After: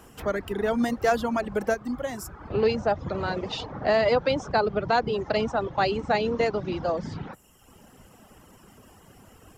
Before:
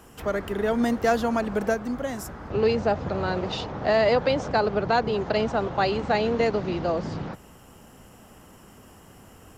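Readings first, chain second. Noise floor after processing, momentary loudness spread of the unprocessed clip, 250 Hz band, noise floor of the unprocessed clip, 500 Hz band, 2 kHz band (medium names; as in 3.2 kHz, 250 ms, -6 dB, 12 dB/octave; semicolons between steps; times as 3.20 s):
-54 dBFS, 9 LU, -2.5 dB, -51 dBFS, -1.0 dB, -0.5 dB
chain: reverb removal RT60 1 s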